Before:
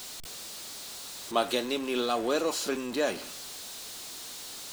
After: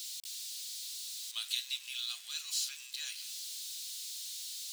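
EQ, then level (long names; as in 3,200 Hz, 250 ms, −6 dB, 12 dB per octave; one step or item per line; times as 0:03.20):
four-pole ladder high-pass 2,600 Hz, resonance 20%
+4.0 dB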